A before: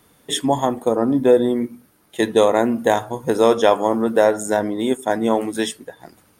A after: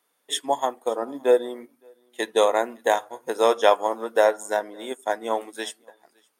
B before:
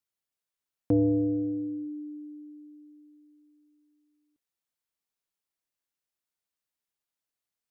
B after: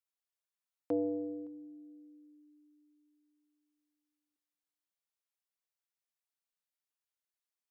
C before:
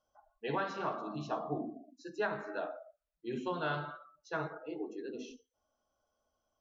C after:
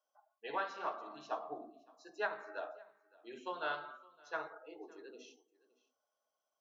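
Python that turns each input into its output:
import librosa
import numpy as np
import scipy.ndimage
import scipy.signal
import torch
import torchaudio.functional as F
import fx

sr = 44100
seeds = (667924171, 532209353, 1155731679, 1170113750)

p1 = scipy.signal.sosfilt(scipy.signal.butter(2, 510.0, 'highpass', fs=sr, output='sos'), x)
p2 = p1 + fx.echo_single(p1, sr, ms=565, db=-22.0, dry=0)
y = fx.upward_expand(p2, sr, threshold_db=-41.0, expansion=1.5)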